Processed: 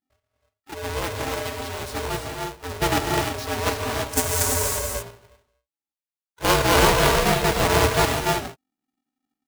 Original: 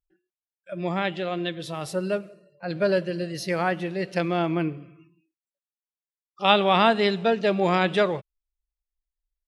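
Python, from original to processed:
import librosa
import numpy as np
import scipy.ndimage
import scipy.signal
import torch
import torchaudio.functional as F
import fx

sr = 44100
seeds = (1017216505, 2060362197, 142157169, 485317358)

p1 = fx.halfwave_hold(x, sr)
p2 = fx.level_steps(p1, sr, step_db=18)
p3 = p1 + (p2 * librosa.db_to_amplitude(-2.0))
p4 = fx.high_shelf_res(p3, sr, hz=4900.0, db=14.0, q=1.5, at=(4.09, 4.68))
p5 = fx.rev_gated(p4, sr, seeds[0], gate_ms=360, shape='rising', drr_db=1.0)
p6 = p5 * np.sign(np.sin(2.0 * np.pi * 260.0 * np.arange(len(p5)) / sr))
y = p6 * librosa.db_to_amplitude(-8.0)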